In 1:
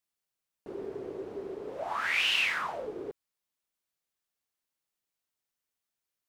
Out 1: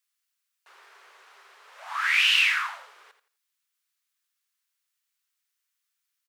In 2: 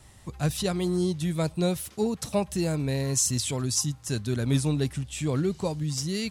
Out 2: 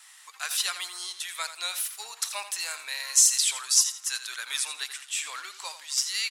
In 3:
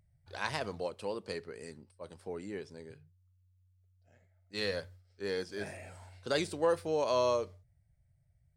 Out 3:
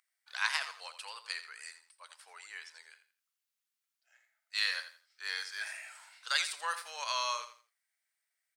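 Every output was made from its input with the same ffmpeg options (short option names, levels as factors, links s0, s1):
-filter_complex "[0:a]highpass=f=1200:w=0.5412,highpass=f=1200:w=1.3066,asplit=2[s0][s1];[s1]aecho=0:1:84|168|252:0.266|0.0692|0.018[s2];[s0][s2]amix=inputs=2:normalize=0,volume=2.11"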